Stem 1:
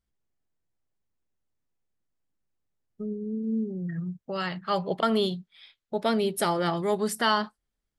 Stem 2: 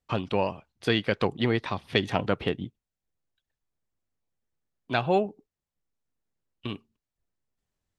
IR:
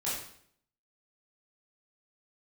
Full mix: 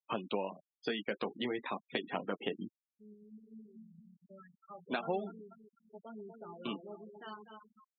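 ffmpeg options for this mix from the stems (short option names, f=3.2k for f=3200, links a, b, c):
-filter_complex "[0:a]volume=-19.5dB,asplit=2[a][b];[b]volume=-5.5dB[c];[1:a]highpass=f=190:w=0.5412,highpass=f=190:w=1.3066,acompressor=threshold=-28dB:ratio=16,volume=0.5dB[d];[c]aecho=0:1:241|482|723|964|1205|1446|1687|1928:1|0.56|0.314|0.176|0.0983|0.0551|0.0308|0.0173[e];[a][d][e]amix=inputs=3:normalize=0,flanger=delay=8.7:depth=6.5:regen=-39:speed=0.35:shape=sinusoidal,afftfilt=real='re*gte(hypot(re,im),0.01)':imag='im*gte(hypot(re,im),0.01)':win_size=1024:overlap=0.75"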